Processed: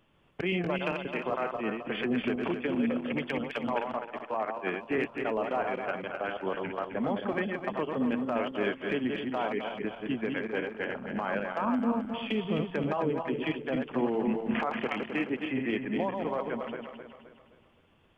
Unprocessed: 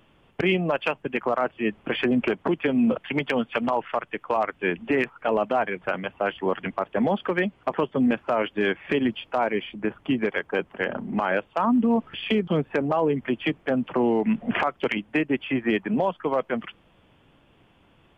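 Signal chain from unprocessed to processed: backward echo that repeats 131 ms, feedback 64%, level -4 dB; 3.38–4.98 s: three bands expanded up and down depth 100%; trim -8.5 dB

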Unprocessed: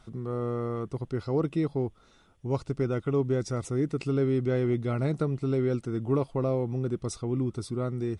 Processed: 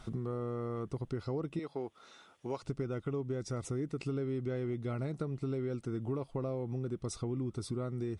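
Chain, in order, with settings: 1.59–2.63 s: frequency weighting A; compression 5:1, threshold -39 dBFS, peak gain reduction 16 dB; trim +4.5 dB

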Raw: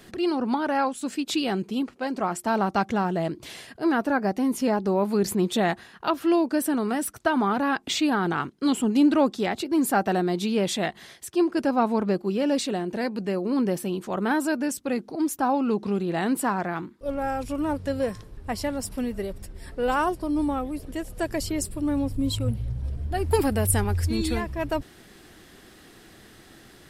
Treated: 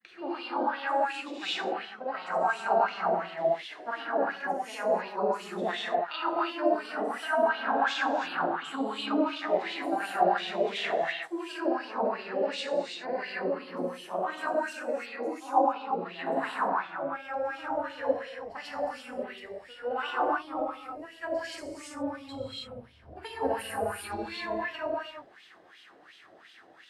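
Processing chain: granulator, pitch spread up and down by 0 st; gated-style reverb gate 360 ms flat, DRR -7 dB; wah-wah 2.8 Hz 590–3200 Hz, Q 3.2

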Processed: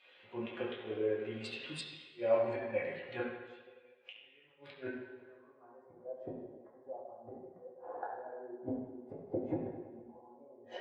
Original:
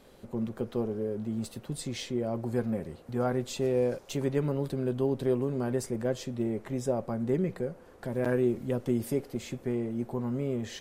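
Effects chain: band-pass sweep 2.6 kHz -> 780 Hz, 4.54–6.02 s; inverted gate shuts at -41 dBFS, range -28 dB; reverberation RT60 2.0 s, pre-delay 4 ms, DRR -6.5 dB; spectral contrast expander 1.5:1; trim +18 dB

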